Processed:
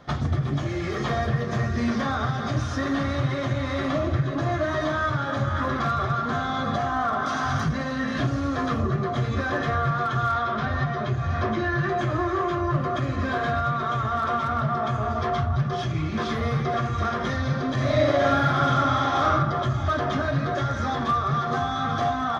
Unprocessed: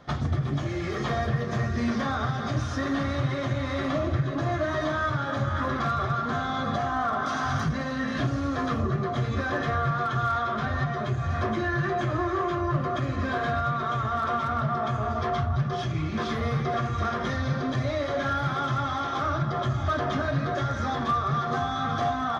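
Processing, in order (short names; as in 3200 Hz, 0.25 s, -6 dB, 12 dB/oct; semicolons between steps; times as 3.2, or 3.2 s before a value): 10.34–11.89 LPF 6400 Hz 24 dB/oct; 17.74–19.3 reverb throw, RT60 0.96 s, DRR -2.5 dB; gain +2 dB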